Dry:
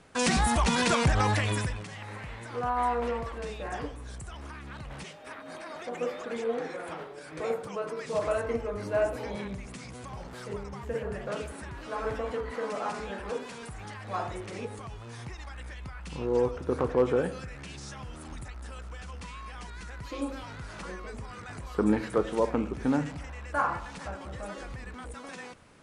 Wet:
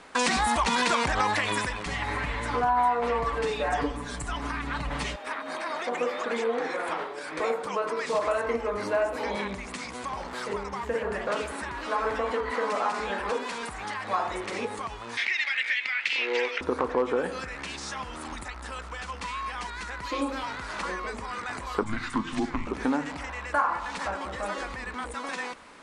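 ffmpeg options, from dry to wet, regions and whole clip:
-filter_complex "[0:a]asettb=1/sr,asplit=3[a][b][c];[a]atrim=end=1.864[d];[b]atrim=start=1.86:end=5.16,asetpts=PTS-STARTPTS,afade=t=in:d=0.004:c=qsin,afade=t=out:st=3.296:d=0.004:c=qsin,aecho=1:1:6.9:0.87,atrim=end_sample=145530,aeval=exprs='val(0)+0.00708*(sin(2*PI*60*n/s)+sin(2*PI*2*60*n/s)/2+sin(2*PI*3*60*n/s)/3+sin(2*PI*4*60*n/s)/4+sin(2*PI*5*60*n/s)/5)':c=same,lowshelf=f=190:g=10.5[e];[c]atrim=start=5.156[f];[d][e]acrossfade=d=0.004:c1=hsin:c2=qsin[g];[g][f]acrossfade=d=0.004:c1=qsin:c2=hsin,asettb=1/sr,asplit=3[h][i][j];[h]atrim=end=15.174[k];[i]atrim=start=15.17:end=16.61,asetpts=PTS-STARTPTS,afade=t=in:d=0.004:c=qsin,afade=t=out:st=1.436:d=0.004:c=qsin,highpass=490,lowpass=4k,highshelf=f=1.5k:t=q:w=3:g=12.5[l];[j]atrim=start=16.606[m];[k][l]acrossfade=d=0.004:c1=hsin:c2=qsin[n];[n][m]acrossfade=d=0.004:c1=qsin:c2=hsin,asettb=1/sr,asplit=3[o][p][q];[o]atrim=end=21.834[r];[p]atrim=start=21.83:end=22.67,asetpts=PTS-STARTPTS,afade=t=in:d=0.004:c=qsin,afade=t=out:st=0.836:d=0.004:c=qsin,lowpass=9k,afreqshift=-210,equalizer=f=600:w=1.2:g=-13.5[s];[q]atrim=start=22.666[t];[r][s]acrossfade=d=0.004:c1=hsin:c2=qsin[u];[u][t]acrossfade=d=0.004:c1=qsin:c2=hsin,equalizer=f=125:t=o:w=1:g=-10,equalizer=f=250:t=o:w=1:g=6,equalizer=f=500:t=o:w=1:g=3,equalizer=f=1k:t=o:w=1:g=10,equalizer=f=2k:t=o:w=1:g=7,equalizer=f=4k:t=o:w=1:g=7,equalizer=f=8k:t=o:w=1:g=5,acompressor=threshold=-25dB:ratio=2.5"

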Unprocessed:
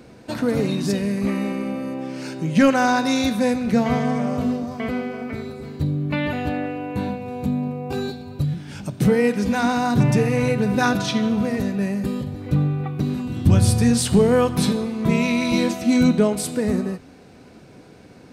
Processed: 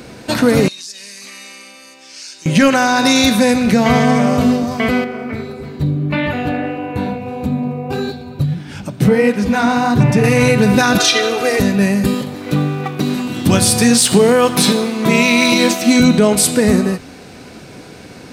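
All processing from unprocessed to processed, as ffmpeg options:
-filter_complex "[0:a]asettb=1/sr,asplit=3[a][b][c];[a]atrim=end=0.684[d];[b]atrim=start=0.68:end=2.46,asetpts=PTS-STARTPTS,afade=t=in:d=0.004:c=qsin,afade=t=out:st=1.776:d=0.004:c=qsin,bandpass=f=6k:t=q:w=1.5,acompressor=threshold=-44dB:ratio=4:attack=3.2:release=140:knee=1:detection=peak[e];[c]atrim=start=2.456[f];[d][e]acrossfade=d=0.004:c1=hsin:c2=qsin[g];[g][f]acrossfade=d=0.004:c1=qsin:c2=hsin,asettb=1/sr,asplit=3[h][i][j];[h]atrim=end=5.044[k];[i]atrim=start=5.04:end=10.24,asetpts=PTS-STARTPTS,afade=t=in:d=0.004:c=qsin,afade=t=out:st=5.196:d=0.004:c=qsin,equalizer=f=9.3k:t=o:w=2.9:g=-8.5,flanger=delay=0.9:depth=8.6:regen=-46:speed=1.6:shape=triangular[l];[j]atrim=start=10.236[m];[k][l]acrossfade=d=0.004:c1=hsin:c2=qsin[n];[n][m]acrossfade=d=0.004:c1=qsin:c2=hsin,asettb=1/sr,asplit=3[o][p][q];[o]atrim=end=10.984[r];[p]atrim=start=10.98:end=11.6,asetpts=PTS-STARTPTS,afade=t=in:d=0.004:c=qsin,afade=t=out:st=0.616:d=0.004:c=qsin,highpass=350,aecho=1:1:2.5:0.93,atrim=end_sample=27342[s];[q]atrim=start=11.596[t];[r][s]acrossfade=d=0.004:c1=hsin:c2=qsin[u];[u][t]acrossfade=d=0.004:c1=qsin:c2=hsin,asettb=1/sr,asplit=3[v][w][x];[v]atrim=end=12.144[y];[w]atrim=start=12.14:end=16,asetpts=PTS-STARTPTS,afade=t=in:d=0.004:c=qsin,afade=t=out:st=3.856:d=0.004:c=qsin,aeval=exprs='sgn(val(0))*max(abs(val(0))-0.00562,0)':c=same,highpass=210[z];[x]atrim=start=15.996[aa];[y][z]acrossfade=d=0.004:c1=hsin:c2=qsin[ab];[ab][aa]acrossfade=d=0.004:c1=qsin:c2=hsin,tiltshelf=f=1.4k:g=-3.5,alimiter=level_in=13.5dB:limit=-1dB:release=50:level=0:latency=1,volume=-1dB"

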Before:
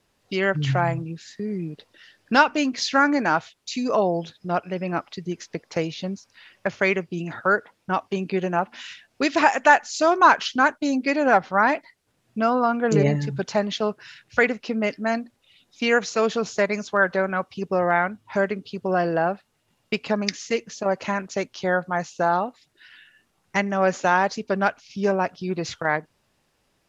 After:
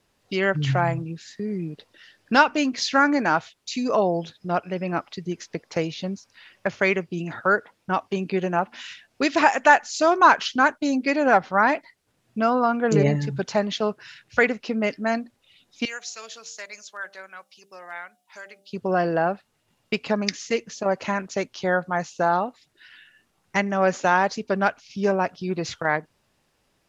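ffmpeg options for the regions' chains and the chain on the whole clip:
-filter_complex "[0:a]asettb=1/sr,asplit=3[a][b][c];[a]atrim=end=15.854[d];[b]atrim=start=15.85:end=18.73,asetpts=PTS-STARTPTS,afade=t=in:d=0.004:c=qsin,afade=t=out:st=2.876:d=0.004:c=qsin,aderivative,bandreject=f=65.64:t=h:w=4,bandreject=f=131.28:t=h:w=4,bandreject=f=196.92:t=h:w=4,bandreject=f=262.56:t=h:w=4,bandreject=f=328.2:t=h:w=4,bandreject=f=393.84:t=h:w=4,bandreject=f=459.48:t=h:w=4,bandreject=f=525.12:t=h:w=4,bandreject=f=590.76:t=h:w=4,bandreject=f=656.4:t=h:w=4,bandreject=f=722.04:t=h:w=4,bandreject=f=787.68:t=h:w=4[e];[c]atrim=start=18.726[f];[d][e]acrossfade=d=0.004:c1=hsin:c2=qsin[g];[g][f]acrossfade=d=0.004:c1=qsin:c2=hsin"

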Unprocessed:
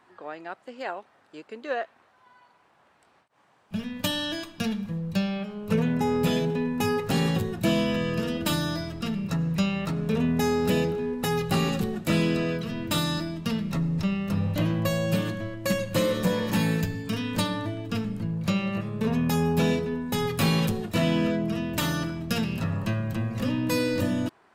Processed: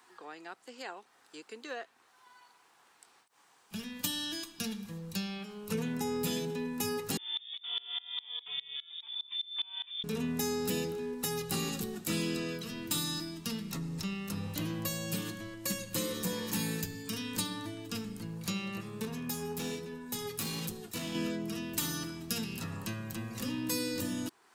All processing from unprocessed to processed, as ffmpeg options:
-filter_complex "[0:a]asettb=1/sr,asplit=3[a][b][c];[a]atrim=end=7.174[d];[b]atrim=start=7.17:end=10.04,asetpts=PTS-STARTPTS,afade=t=in:d=0.004:c=qsin,afade=t=out:st=2.866:d=0.004:c=qsin,volume=20.5dB,asoftclip=hard,volume=-20.5dB,lowpass=f=3.1k:t=q:w=0.5098,lowpass=f=3.1k:t=q:w=0.6013,lowpass=f=3.1k:t=q:w=0.9,lowpass=f=3.1k:t=q:w=2.563,afreqshift=-3700,aeval=exprs='val(0)*pow(10,-25*if(lt(mod(-4.9*n/s,1),2*abs(-4.9)/1000),1-mod(-4.9*n/s,1)/(2*abs(-4.9)/1000),(mod(-4.9*n/s,1)-2*abs(-4.9)/1000)/(1-2*abs(-4.9)/1000))/20)':c=same[e];[c]atrim=start=10.036[f];[d][e]acrossfade=d=0.004:c1=hsin:c2=qsin[g];[g][f]acrossfade=d=0.004:c1=qsin:c2=hsin,asettb=1/sr,asplit=3[h][i][j];[h]atrim=end=19.054[k];[i]atrim=start=19.05:end=21.15,asetpts=PTS-STARTPTS,afade=t=in:d=0.004:c=qsin,afade=t=out:st=2.096:d=0.004:c=qsin,volume=19dB,asoftclip=hard,volume=-19dB,flanger=delay=5.5:depth=4.5:regen=68:speed=1.2:shape=triangular[l];[j]atrim=start=21.146[m];[k][l]acrossfade=d=0.004:c1=hsin:c2=qsin[n];[n][m]acrossfade=d=0.004:c1=qsin:c2=hsin,bass=f=250:g=-12,treble=f=4k:g=14,acrossover=split=360[o][p];[p]acompressor=threshold=-48dB:ratio=1.5[q];[o][q]amix=inputs=2:normalize=0,equalizer=f=600:w=5.1:g=-12,volume=-2dB"

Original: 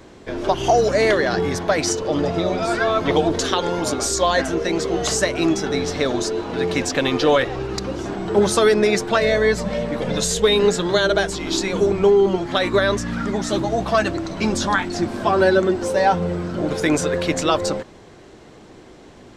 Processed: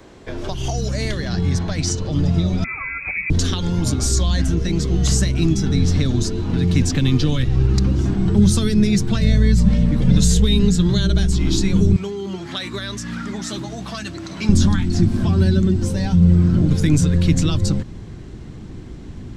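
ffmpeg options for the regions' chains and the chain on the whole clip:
-filter_complex "[0:a]asettb=1/sr,asplit=3[a][b][c];[a]atrim=end=1.284[d];[b]atrim=start=1.28:end=2.11,asetpts=PTS-STARTPTS,afade=t=in:d=0.004:c=qsin,afade=t=out:st=0.826:d=0.004:c=qsin,lowpass=8.7k,aeval=exprs='val(0)+0.00355*sin(2*PI*4100*n/s)':c=same[e];[c]atrim=start=2.106[f];[d][e]acrossfade=d=0.004:c1=hsin:c2=qsin[g];[g][f]acrossfade=d=0.004:c1=qsin:c2=hsin,asettb=1/sr,asplit=3[h][i][j];[h]atrim=end=2.644[k];[i]atrim=start=2.64:end=3.3,asetpts=PTS-STARTPTS,afade=t=in:d=0.004:c=qsin,afade=t=out:st=0.656:d=0.004:c=qsin,highpass=90,equalizer=f=950:t=o:w=0.48:g=-8.5,lowpass=f=2.3k:t=q:w=0.5098,lowpass=f=2.3k:t=q:w=0.6013,lowpass=f=2.3k:t=q:w=0.9,lowpass=f=2.3k:t=q:w=2.563,afreqshift=-2700[l];[j]atrim=start=3.296[m];[k][l]acrossfade=d=0.004:c1=hsin:c2=qsin[n];[n][m]acrossfade=d=0.004:c1=qsin:c2=hsin,asettb=1/sr,asplit=3[o][p][q];[o]atrim=end=11.964[r];[p]atrim=start=11.96:end=14.49,asetpts=PTS-STARTPTS,afade=t=in:d=0.004:c=qsin,afade=t=out:st=2.526:d=0.004:c=qsin,highpass=f=1k:p=1,acompressor=mode=upward:threshold=-29dB:ratio=2.5:attack=3.2:release=140:knee=2.83:detection=peak[s];[q]atrim=start=14.486[t];[r][s]acrossfade=d=0.004:c1=hsin:c2=qsin[u];[u][t]acrossfade=d=0.004:c1=qsin:c2=hsin,acrossover=split=240|3000[v][w][x];[w]acompressor=threshold=-29dB:ratio=6[y];[v][y][x]amix=inputs=3:normalize=0,asubboost=boost=9.5:cutoff=180"

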